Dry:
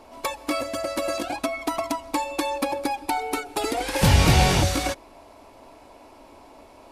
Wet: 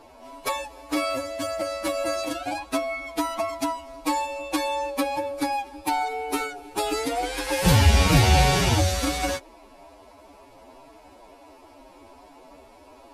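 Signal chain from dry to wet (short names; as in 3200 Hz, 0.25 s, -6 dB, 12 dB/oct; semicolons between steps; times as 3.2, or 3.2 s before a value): time stretch by phase-locked vocoder 1.9×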